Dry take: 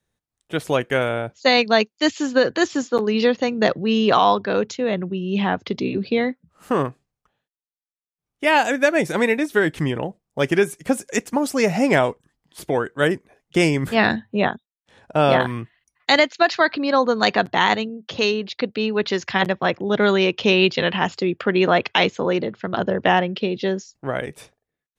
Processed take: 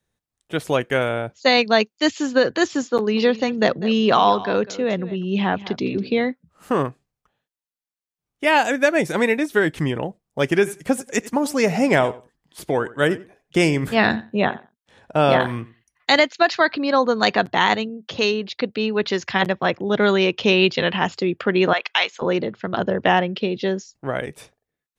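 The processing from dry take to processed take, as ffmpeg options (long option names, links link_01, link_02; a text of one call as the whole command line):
ffmpeg -i in.wav -filter_complex "[0:a]asettb=1/sr,asplit=3[link_01][link_02][link_03];[link_01]atrim=end=2.974[link_04];[link_02]atrim=start=2.97:end=6.15,asetpts=PTS-STARTPTS,afade=type=in:duration=0.004:curve=qsin,afade=type=out:start_time=3.176:duration=0.004:curve=qsin,aecho=1:1:199:0.15,atrim=end_sample=140238[link_05];[link_03]atrim=start=6.146[link_06];[link_04][link_05]acrossfade=duration=0.004:curve1=hsin:curve2=qsin[link_07];[link_07][link_06]acrossfade=duration=0.004:curve1=qsin:curve2=hsin,asettb=1/sr,asplit=3[link_08][link_09][link_10];[link_08]atrim=end=10.564[link_11];[link_09]atrim=start=10.56:end=16.21,asetpts=PTS-STARTPTS,afade=type=in:duration=0.004:curve=qsin,afade=type=out:start_time=5.646:duration=0.004:curve=qsin,asplit=2[link_12][link_13];[link_13]adelay=90,lowpass=frequency=3700:poles=1,volume=-18dB,asplit=2[link_14][link_15];[link_15]adelay=90,lowpass=frequency=3700:poles=1,volume=0.16[link_16];[link_12][link_14][link_16]amix=inputs=3:normalize=0,atrim=end_sample=249165[link_17];[link_10]atrim=start=16.206[link_18];[link_11][link_17]acrossfade=duration=0.004:curve1=hsin:curve2=qsin[link_19];[link_19][link_18]acrossfade=duration=0.004:curve1=qsin:curve2=hsin,asettb=1/sr,asplit=3[link_20][link_21][link_22];[link_20]atrim=end=21.734[link_23];[link_21]atrim=start=21.73:end=22.22,asetpts=PTS-STARTPTS,afade=type=in:duration=0.004:curve=qsin,afade=type=out:start_time=0.486:duration=0.004:curve=qsin,highpass=950[link_24];[link_22]atrim=start=22.216[link_25];[link_23][link_24]acrossfade=duration=0.004:curve1=hsin:curve2=qsin[link_26];[link_26][link_25]acrossfade=duration=0.004:curve1=qsin:curve2=hsin" out.wav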